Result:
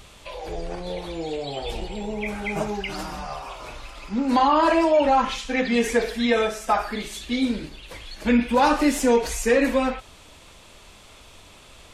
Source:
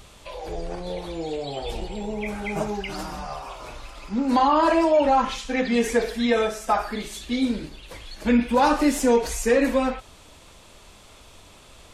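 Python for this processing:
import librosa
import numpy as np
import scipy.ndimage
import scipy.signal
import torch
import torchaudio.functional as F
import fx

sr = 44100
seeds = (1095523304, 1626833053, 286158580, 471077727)

y = fx.peak_eq(x, sr, hz=2500.0, db=3.0, octaves=1.4)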